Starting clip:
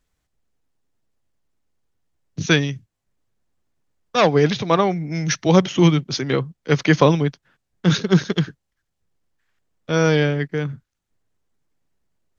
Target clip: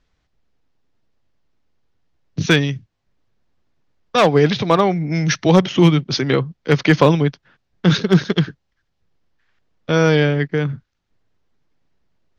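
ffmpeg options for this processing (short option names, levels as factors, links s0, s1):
-filter_complex "[0:a]lowpass=f=5500:w=0.5412,lowpass=f=5500:w=1.3066,asplit=2[s0][s1];[s1]acompressor=threshold=0.0631:ratio=4,volume=1.06[s2];[s0][s2]amix=inputs=2:normalize=0,asoftclip=type=hard:threshold=0.668"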